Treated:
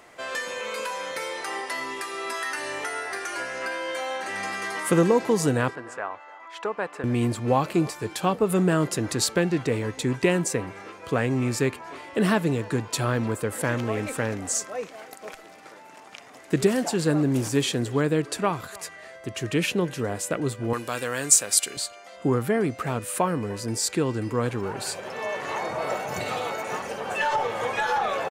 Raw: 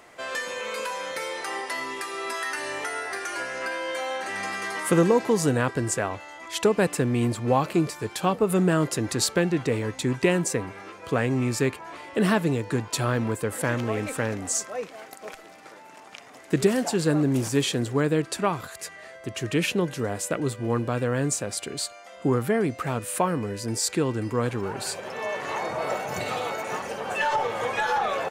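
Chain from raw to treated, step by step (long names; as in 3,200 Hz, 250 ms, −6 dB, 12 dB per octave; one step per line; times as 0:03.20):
0:05.75–0:07.04: resonant band-pass 1,100 Hz, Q 1.3
0:20.73–0:21.77: spectral tilt +4 dB per octave
far-end echo of a speakerphone 300 ms, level −21 dB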